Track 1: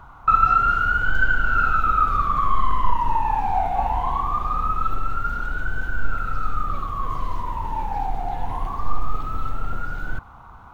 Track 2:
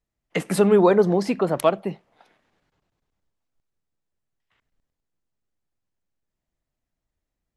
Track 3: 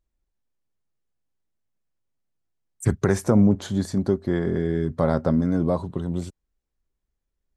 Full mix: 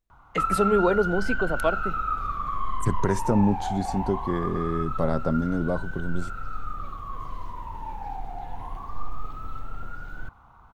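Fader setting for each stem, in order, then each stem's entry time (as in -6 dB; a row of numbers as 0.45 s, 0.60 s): -9.0 dB, -5.5 dB, -4.0 dB; 0.10 s, 0.00 s, 0.00 s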